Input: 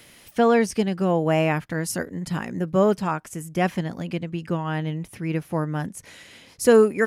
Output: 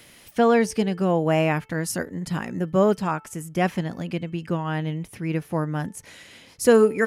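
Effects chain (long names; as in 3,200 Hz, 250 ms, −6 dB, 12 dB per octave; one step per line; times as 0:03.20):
hum removal 439.7 Hz, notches 7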